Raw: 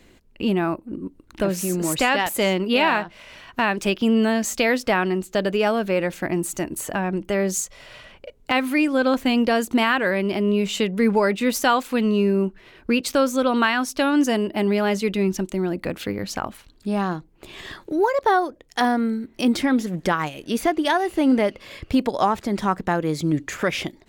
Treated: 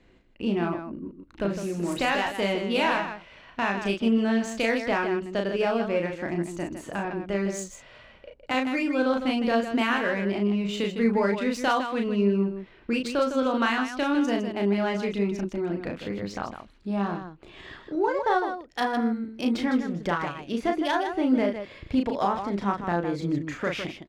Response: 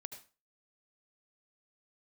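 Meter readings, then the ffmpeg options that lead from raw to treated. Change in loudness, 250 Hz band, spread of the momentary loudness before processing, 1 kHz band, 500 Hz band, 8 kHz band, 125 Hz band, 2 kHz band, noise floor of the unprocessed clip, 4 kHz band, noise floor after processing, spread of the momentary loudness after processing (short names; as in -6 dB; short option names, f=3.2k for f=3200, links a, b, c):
-5.0 dB, -4.5 dB, 9 LU, -5.0 dB, -4.5 dB, -13.0 dB, -4.5 dB, -5.0 dB, -54 dBFS, -6.0 dB, -54 dBFS, 10 LU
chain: -af "adynamicsmooth=sensitivity=1.5:basefreq=4.1k,aecho=1:1:34.99|157.4:0.631|0.398,volume=-6.5dB"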